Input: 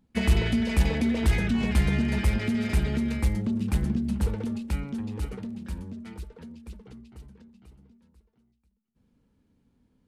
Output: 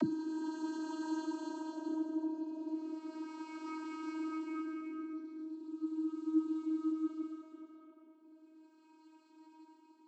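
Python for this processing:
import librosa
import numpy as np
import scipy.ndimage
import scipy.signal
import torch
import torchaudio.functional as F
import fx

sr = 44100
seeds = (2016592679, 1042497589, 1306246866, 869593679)

y = fx.bin_expand(x, sr, power=3.0)
y = fx.low_shelf(y, sr, hz=440.0, db=3.5)
y = fx.paulstretch(y, sr, seeds[0], factor=5.6, window_s=0.5, from_s=4.04)
y = fx.vocoder(y, sr, bands=32, carrier='saw', carrier_hz=316.0)
y = F.gain(torch.from_numpy(y), 5.0).numpy()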